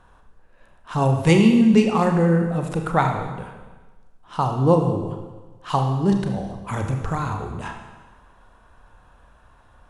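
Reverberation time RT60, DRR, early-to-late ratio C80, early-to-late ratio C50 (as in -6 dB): 1.3 s, 3.5 dB, 7.5 dB, 6.0 dB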